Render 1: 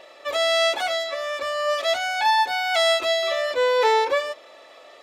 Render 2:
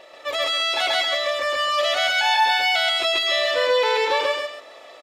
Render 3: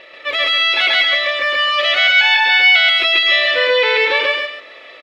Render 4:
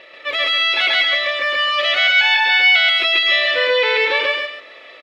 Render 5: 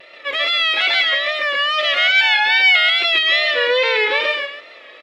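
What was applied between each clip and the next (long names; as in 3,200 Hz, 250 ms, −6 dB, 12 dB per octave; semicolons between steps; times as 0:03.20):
dynamic equaliser 3,100 Hz, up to +7 dB, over −36 dBFS, Q 1; brickwall limiter −15.5 dBFS, peak gain reduction 9.5 dB; on a send: loudspeakers that aren't time-aligned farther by 46 metres 0 dB, 93 metres −9 dB
drawn EQ curve 510 Hz 0 dB, 750 Hz −8 dB, 2,200 Hz +9 dB, 4,000 Hz +1 dB, 7,300 Hz −13 dB; level +4 dB
high-pass filter 53 Hz; level −2 dB
pitch vibrato 2.4 Hz 66 cents; mains-hum notches 60/120 Hz; harmonic generator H 3 −35 dB, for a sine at −3 dBFS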